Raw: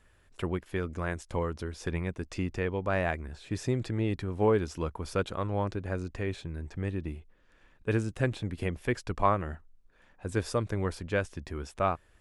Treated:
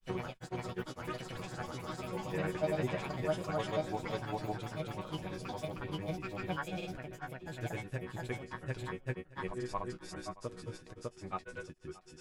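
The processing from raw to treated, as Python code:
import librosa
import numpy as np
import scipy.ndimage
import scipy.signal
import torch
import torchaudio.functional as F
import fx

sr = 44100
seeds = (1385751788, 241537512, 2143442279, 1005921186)

y = fx.echo_pitch(x, sr, ms=106, semitones=6, count=3, db_per_echo=-3.0)
y = fx.resonator_bank(y, sr, root=47, chord='major', decay_s=0.31)
y = fx.granulator(y, sr, seeds[0], grain_ms=100.0, per_s=20.0, spray_ms=937.0, spread_st=0)
y = y + 10.0 ** (-20.0 / 20.0) * np.pad(y, (int(624 * sr / 1000.0), 0))[:len(y)]
y = y * 10.0 ** (6.5 / 20.0)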